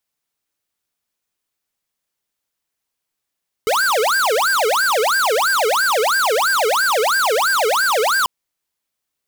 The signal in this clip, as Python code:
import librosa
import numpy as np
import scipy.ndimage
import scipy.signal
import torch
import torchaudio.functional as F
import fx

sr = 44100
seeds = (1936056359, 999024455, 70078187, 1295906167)

y = fx.siren(sr, length_s=4.59, kind='wail', low_hz=422.0, high_hz=1600.0, per_s=3.0, wave='square', level_db=-16.5)